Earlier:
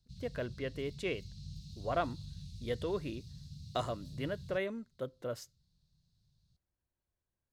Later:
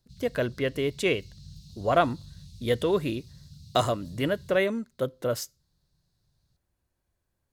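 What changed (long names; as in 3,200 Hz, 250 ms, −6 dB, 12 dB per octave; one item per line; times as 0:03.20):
speech +11.0 dB
master: add high-shelf EQ 8,600 Hz +10.5 dB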